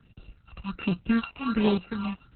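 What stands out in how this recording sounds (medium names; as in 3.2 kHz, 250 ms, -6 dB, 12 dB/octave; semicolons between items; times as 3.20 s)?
a buzz of ramps at a fixed pitch in blocks of 32 samples; phasing stages 6, 1.3 Hz, lowest notch 390–1700 Hz; a quantiser's noise floor 12-bit, dither none; Opus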